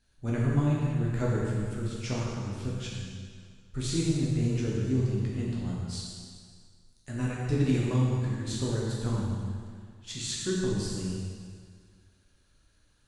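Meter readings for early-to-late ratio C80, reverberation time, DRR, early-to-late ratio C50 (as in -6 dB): 0.0 dB, 1.9 s, -5.0 dB, -1.5 dB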